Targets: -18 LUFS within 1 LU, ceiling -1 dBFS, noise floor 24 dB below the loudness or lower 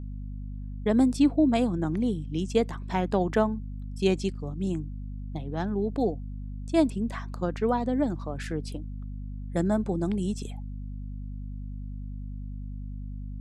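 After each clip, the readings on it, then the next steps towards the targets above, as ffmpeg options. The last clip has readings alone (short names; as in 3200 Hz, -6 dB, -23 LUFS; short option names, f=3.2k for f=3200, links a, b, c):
hum 50 Hz; harmonics up to 250 Hz; hum level -33 dBFS; loudness -28.0 LUFS; peak -10.0 dBFS; loudness target -18.0 LUFS
-> -af "bandreject=f=50:t=h:w=6,bandreject=f=100:t=h:w=6,bandreject=f=150:t=h:w=6,bandreject=f=200:t=h:w=6,bandreject=f=250:t=h:w=6"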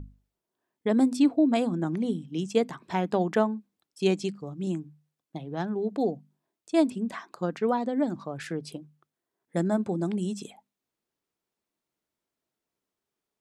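hum none; loudness -28.0 LUFS; peak -10.0 dBFS; loudness target -18.0 LUFS
-> -af "volume=10dB,alimiter=limit=-1dB:level=0:latency=1"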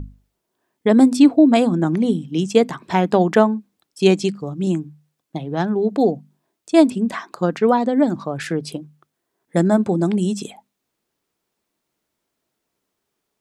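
loudness -18.0 LUFS; peak -1.0 dBFS; noise floor -78 dBFS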